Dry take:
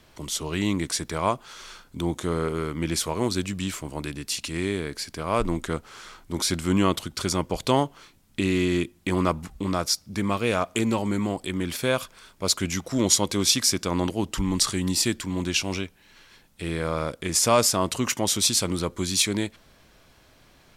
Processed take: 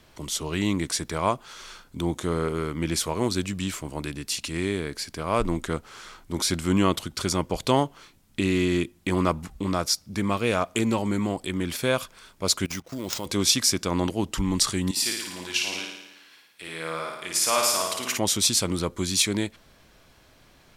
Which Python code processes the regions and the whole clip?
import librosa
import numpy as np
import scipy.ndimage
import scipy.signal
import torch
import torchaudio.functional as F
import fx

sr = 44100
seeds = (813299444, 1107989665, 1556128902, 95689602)

y = fx.chain(x, sr, fx.low_shelf(hz=220.0, db=-3.5),
    fx.level_steps(step_db=16),
    fx.sample_hold(seeds[0], rate_hz=12000.0, jitter_pct=0), at=(12.65, 13.26))
y = fx.chain(y, sr, fx.highpass(hz=1300.0, slope=6),
    fx.peak_eq(hz=6700.0, db=-4.0, octaves=0.85),
    fx.room_flutter(wall_m=9.5, rt60_s=0.95), at=(14.91, 18.18))